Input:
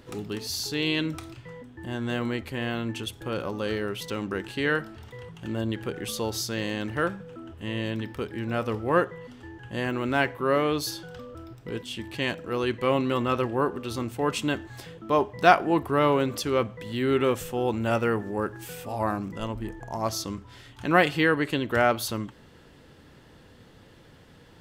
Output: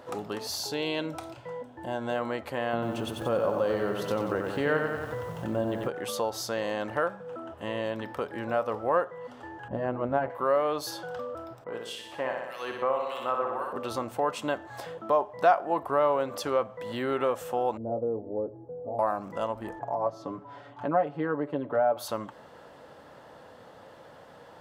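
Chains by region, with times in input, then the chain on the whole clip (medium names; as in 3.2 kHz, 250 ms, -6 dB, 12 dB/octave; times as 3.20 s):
0.58–2.16 s: peaking EQ 1.8 kHz -6.5 dB 0.21 oct + band-stop 1.2 kHz, Q 5.2
2.73–5.88 s: bass shelf 390 Hz +11.5 dB + de-hum 293.7 Hz, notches 34 + bit-crushed delay 92 ms, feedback 55%, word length 8-bit, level -5 dB
9.68–10.30 s: tilt EQ -4 dB/octave + AM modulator 130 Hz, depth 65% + tape noise reduction on one side only decoder only
11.64–13.73 s: bass shelf 370 Hz -10 dB + harmonic tremolo 1.7 Hz, depth 100%, crossover 2 kHz + flutter echo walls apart 10.5 m, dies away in 0.83 s
17.77–18.99 s: inverse Chebyshev low-pass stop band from 3.1 kHz, stop band 80 dB + comb of notches 190 Hz
19.79–21.97 s: band-pass filter 220 Hz, Q 0.6 + comb 7 ms, depth 72% + tape noise reduction on one side only encoder only
whole clip: FFT filter 390 Hz 0 dB, 580 Hz +13 dB, 1.2 kHz +8 dB, 2.3 kHz -2 dB; compression 2:1, threshold -29 dBFS; high-pass 230 Hz 6 dB/octave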